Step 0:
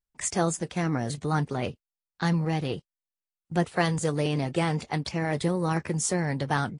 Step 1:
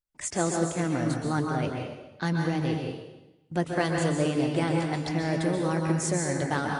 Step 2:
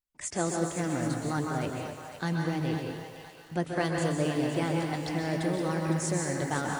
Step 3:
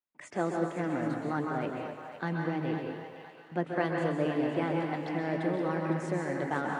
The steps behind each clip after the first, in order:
small resonant body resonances 310/580/1500 Hz, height 6 dB; on a send at -1 dB: reverberation RT60 1.0 s, pre-delay 117 ms; on the sum: trim -3.5 dB
thinning echo 509 ms, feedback 48%, high-pass 810 Hz, level -9 dB; bit-crushed delay 255 ms, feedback 55%, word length 7-bit, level -12.5 dB; trim -3 dB
three-band isolator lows -23 dB, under 150 Hz, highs -20 dB, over 2.9 kHz

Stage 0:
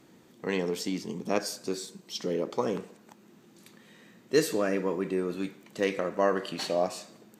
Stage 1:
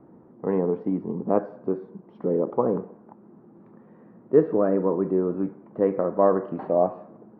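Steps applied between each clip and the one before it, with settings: low-pass 1.1 kHz 24 dB/octave; trim +6.5 dB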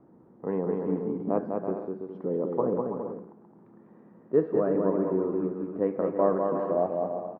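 bouncing-ball echo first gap 200 ms, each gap 0.65×, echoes 5; trim -5.5 dB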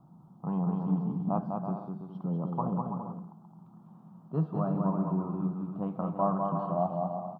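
FFT filter 110 Hz 0 dB, 160 Hz +11 dB, 250 Hz -6 dB, 470 Hz -18 dB, 730 Hz +2 dB, 1.3 kHz +1 dB, 1.9 kHz -23 dB, 3.1 kHz +5 dB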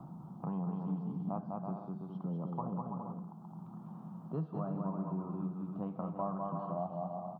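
three bands compressed up and down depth 70%; trim -7.5 dB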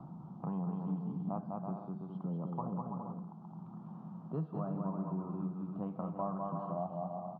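distance through air 110 m

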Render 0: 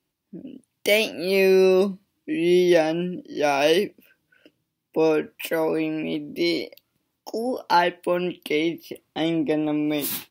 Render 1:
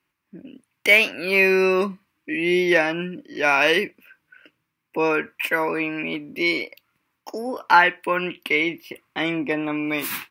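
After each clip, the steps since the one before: high-order bell 1.6 kHz +12.5 dB; trim -2.5 dB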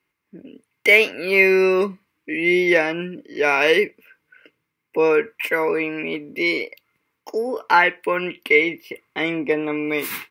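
small resonant body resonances 440/2100 Hz, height 11 dB, ringing for 45 ms; trim -1 dB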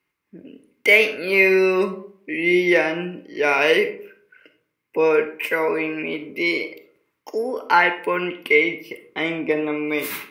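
algorithmic reverb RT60 0.58 s, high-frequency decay 0.45×, pre-delay 5 ms, DRR 9 dB; trim -1 dB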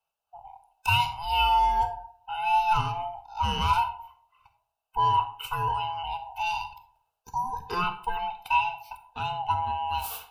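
split-band scrambler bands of 500 Hz; static phaser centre 790 Hz, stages 4; trim -4.5 dB

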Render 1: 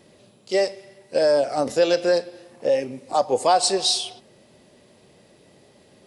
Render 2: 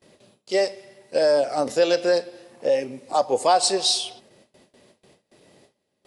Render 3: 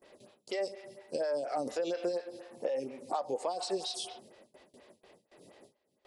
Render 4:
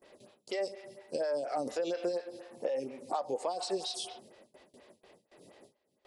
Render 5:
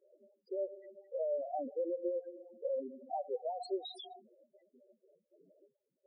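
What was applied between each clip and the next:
gate with hold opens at -43 dBFS; bass shelf 170 Hz -5.5 dB
peak limiter -15 dBFS, peak gain reduction 7.5 dB; compression 6:1, threshold -29 dBFS, peak gain reduction 10 dB; lamp-driven phase shifter 4.2 Hz
no audible change
loudest bins only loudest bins 4; trim -2 dB

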